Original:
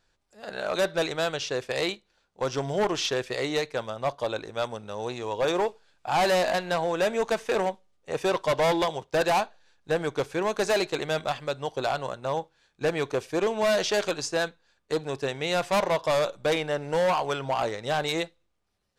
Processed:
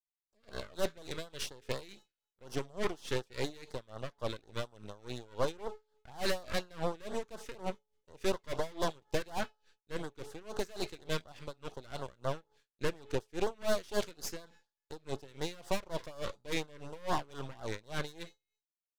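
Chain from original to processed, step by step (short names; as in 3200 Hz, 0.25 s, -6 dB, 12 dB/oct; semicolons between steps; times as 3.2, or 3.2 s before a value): expander -53 dBFS; de-hum 428.2 Hz, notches 17; half-wave rectifier; LFO notch sine 4.1 Hz 690–2500 Hz; dB-linear tremolo 3.5 Hz, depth 23 dB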